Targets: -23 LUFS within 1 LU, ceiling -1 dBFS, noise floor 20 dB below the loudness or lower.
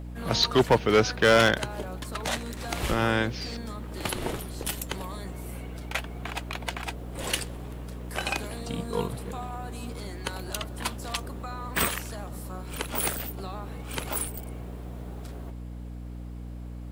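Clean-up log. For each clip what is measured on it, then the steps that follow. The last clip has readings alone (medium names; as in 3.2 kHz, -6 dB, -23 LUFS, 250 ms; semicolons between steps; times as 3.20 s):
clipped samples 0.3%; clipping level -13.0 dBFS; hum 60 Hz; highest harmonic 300 Hz; hum level -36 dBFS; loudness -29.0 LUFS; peak level -13.0 dBFS; loudness target -23.0 LUFS
-> clip repair -13 dBFS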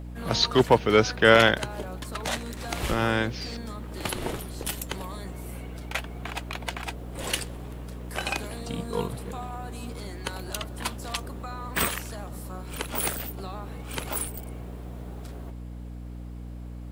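clipped samples 0.0%; hum 60 Hz; highest harmonic 300 Hz; hum level -36 dBFS
-> de-hum 60 Hz, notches 5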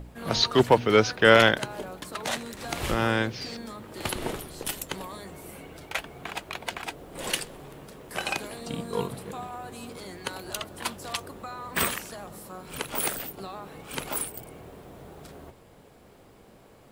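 hum not found; loudness -27.5 LUFS; peak level -4.0 dBFS; loudness target -23.0 LUFS
-> trim +4.5 dB; peak limiter -1 dBFS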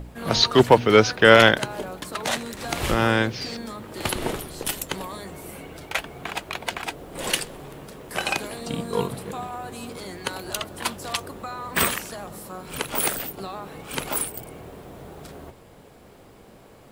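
loudness -23.5 LUFS; peak level -1.0 dBFS; noise floor -49 dBFS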